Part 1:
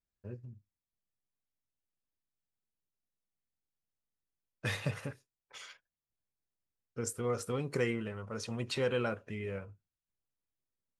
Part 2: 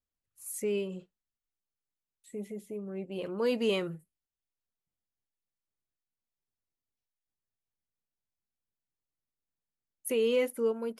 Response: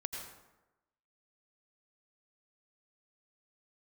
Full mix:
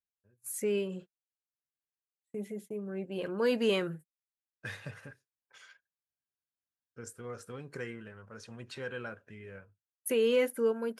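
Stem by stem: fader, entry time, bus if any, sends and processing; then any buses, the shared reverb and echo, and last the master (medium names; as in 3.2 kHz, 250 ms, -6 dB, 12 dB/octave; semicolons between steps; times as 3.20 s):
-9.0 dB, 0.00 s, no send, auto duck -24 dB, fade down 0.45 s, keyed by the second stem
+0.5 dB, 0.00 s, no send, gate -47 dBFS, range -33 dB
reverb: none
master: high-pass 49 Hz; peaking EQ 1.6 kHz +12 dB 0.23 oct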